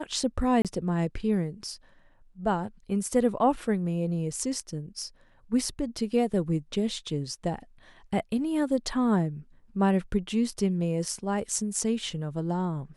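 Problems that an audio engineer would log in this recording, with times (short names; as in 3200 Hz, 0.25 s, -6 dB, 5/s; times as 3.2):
0.62–0.65 gap 27 ms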